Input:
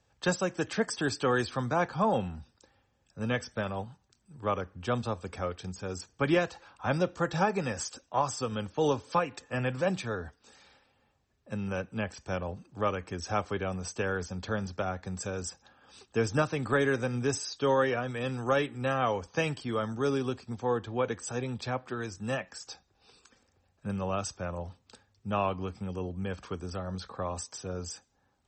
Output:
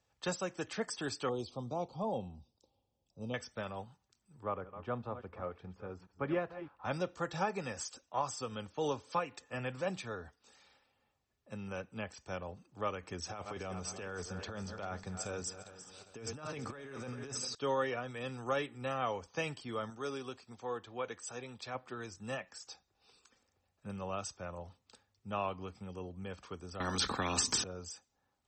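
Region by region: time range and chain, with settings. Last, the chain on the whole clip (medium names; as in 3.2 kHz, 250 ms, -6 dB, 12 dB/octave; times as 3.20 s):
1.29–3.34 s: Butterworth band-stop 1.7 kHz, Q 0.64 + distance through air 90 m
4.43–6.85 s: chunks repeated in reverse 205 ms, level -12 dB + low-pass 1.6 kHz
13.03–17.55 s: backward echo that repeats 201 ms, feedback 62%, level -13 dB + compressor with a negative ratio -34 dBFS
19.90–21.75 s: bass shelf 330 Hz -8 dB + band-stop 860 Hz, Q 28
26.80–27.64 s: resonant low shelf 380 Hz +14 dB, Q 3 + spectrum-flattening compressor 4:1
whole clip: bass shelf 430 Hz -5 dB; band-stop 1.6 kHz, Q 15; trim -5.5 dB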